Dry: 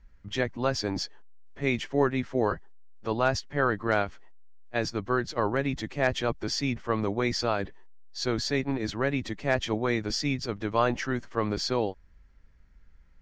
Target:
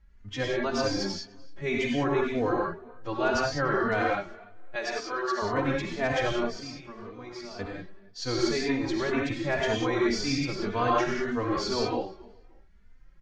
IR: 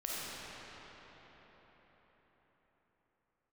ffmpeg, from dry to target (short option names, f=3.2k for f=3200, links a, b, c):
-filter_complex "[0:a]asettb=1/sr,asplit=3[a][b][c];[a]atrim=end=4.754[d];[b]atrim=start=4.75:end=5.42,asetpts=PTS-STARTPTS,afade=t=in:d=0.004:c=qsin,afade=t=out:st=0.666:d=0.004:c=qsin,highpass=510[e];[c]atrim=start=5.416[f];[d][e]acrossfade=d=0.004:c1=hsin:c2=qsin[g];[g][f]acrossfade=d=0.004:c1=qsin:c2=hsin,asettb=1/sr,asplit=3[h][i][j];[h]atrim=end=6.394[k];[i]atrim=start=6.39:end=7.59,asetpts=PTS-STARTPTS,afade=t=in:d=0.004:c=qsin,afade=t=out:st=1.196:d=0.004:c=qsin,acompressor=threshold=-39dB:ratio=6[l];[j]atrim=start=7.586[m];[k][l]acrossfade=d=0.004:c1=hsin:c2=qsin[n];[n][m]acrossfade=d=0.004:c1=qsin:c2=hsin,asplit=2[o][p];[p]adelay=291,lowpass=f=3.9k:p=1,volume=-21.5dB,asplit=2[q][r];[r]adelay=291,lowpass=f=3.9k:p=1,volume=0.26[s];[o][q][s]amix=inputs=3:normalize=0[t];[1:a]atrim=start_sample=2205,afade=t=out:st=0.16:d=0.01,atrim=end_sample=7497,asetrate=24255,aresample=44100[u];[t][u]afir=irnorm=-1:irlink=0,asplit=2[v][w];[w]adelay=3.2,afreqshift=1.9[x];[v][x]amix=inputs=2:normalize=1"